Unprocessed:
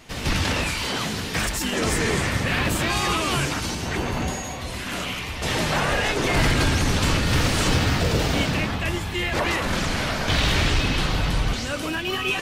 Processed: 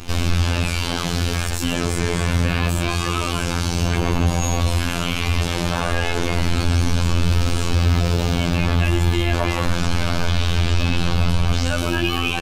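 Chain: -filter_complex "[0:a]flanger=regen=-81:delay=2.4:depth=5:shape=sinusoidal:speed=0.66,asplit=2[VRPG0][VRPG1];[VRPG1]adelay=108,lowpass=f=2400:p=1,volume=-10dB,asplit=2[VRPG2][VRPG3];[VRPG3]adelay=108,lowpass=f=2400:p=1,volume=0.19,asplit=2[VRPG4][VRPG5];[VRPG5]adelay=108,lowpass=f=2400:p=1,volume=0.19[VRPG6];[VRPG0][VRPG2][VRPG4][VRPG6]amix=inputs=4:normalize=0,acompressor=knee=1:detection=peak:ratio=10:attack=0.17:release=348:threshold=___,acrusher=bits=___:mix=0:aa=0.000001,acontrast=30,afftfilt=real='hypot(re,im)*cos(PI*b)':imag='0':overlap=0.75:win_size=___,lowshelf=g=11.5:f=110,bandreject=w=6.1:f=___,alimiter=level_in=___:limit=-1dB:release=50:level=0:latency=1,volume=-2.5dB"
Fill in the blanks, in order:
-27dB, 11, 2048, 1900, 14dB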